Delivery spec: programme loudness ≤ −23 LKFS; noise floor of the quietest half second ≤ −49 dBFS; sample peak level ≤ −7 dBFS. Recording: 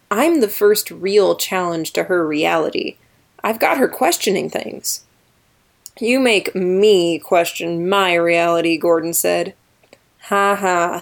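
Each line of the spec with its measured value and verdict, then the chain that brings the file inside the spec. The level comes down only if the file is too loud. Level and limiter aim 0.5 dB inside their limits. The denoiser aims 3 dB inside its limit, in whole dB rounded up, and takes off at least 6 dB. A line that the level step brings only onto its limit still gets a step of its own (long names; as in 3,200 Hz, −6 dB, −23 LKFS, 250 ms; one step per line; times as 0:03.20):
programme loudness −16.5 LKFS: out of spec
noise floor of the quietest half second −58 dBFS: in spec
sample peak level −3.0 dBFS: out of spec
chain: level −7 dB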